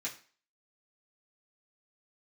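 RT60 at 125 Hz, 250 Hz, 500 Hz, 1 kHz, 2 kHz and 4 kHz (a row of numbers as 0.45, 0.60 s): 0.35, 0.40, 0.40, 0.40, 0.40, 0.40 s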